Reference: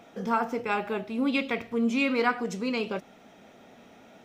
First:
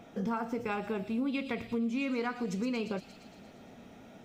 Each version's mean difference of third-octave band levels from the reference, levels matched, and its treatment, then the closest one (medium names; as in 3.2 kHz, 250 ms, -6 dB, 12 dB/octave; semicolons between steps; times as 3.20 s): 4.0 dB: bass shelf 230 Hz +11.5 dB; on a send: feedback echo behind a high-pass 116 ms, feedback 68%, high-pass 5.4 kHz, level -4.5 dB; on the sum: compression 5:1, threshold -27 dBFS, peak gain reduction 10 dB; trim -3 dB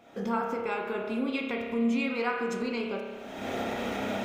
7.5 dB: recorder AGC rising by 46 dB/s; peaking EQ 170 Hz -8.5 dB 0.23 oct; band-stop 5.7 kHz, Q 14; spring tank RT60 1.5 s, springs 30 ms, chirp 60 ms, DRR 1.5 dB; trim -6.5 dB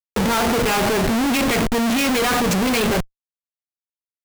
13.0 dB: treble shelf 2 kHz +4.5 dB; waveshaping leveller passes 3; in parallel at -2 dB: peak limiter -21.5 dBFS, peak gain reduction 10.5 dB; on the sum: Schmitt trigger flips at -26 dBFS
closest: first